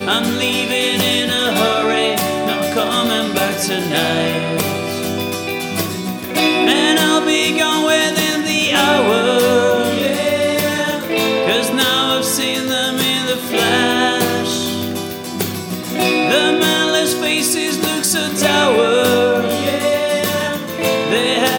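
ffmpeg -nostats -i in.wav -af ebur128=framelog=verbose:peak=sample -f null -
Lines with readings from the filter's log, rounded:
Integrated loudness:
  I:         -15.4 LUFS
  Threshold: -25.4 LUFS
Loudness range:
  LRA:         3.5 LU
  Threshold: -35.4 LUFS
  LRA low:   -17.1 LUFS
  LRA high:  -13.7 LUFS
Sample peak:
  Peak:       -2.7 dBFS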